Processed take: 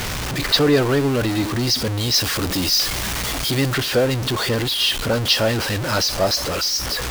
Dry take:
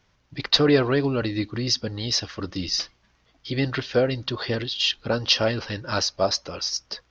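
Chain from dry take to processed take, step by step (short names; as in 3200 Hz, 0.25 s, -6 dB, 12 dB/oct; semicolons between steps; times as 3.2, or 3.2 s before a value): zero-crossing step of -19.5 dBFS; 2.14–3.74 high shelf 5500 Hz +5.5 dB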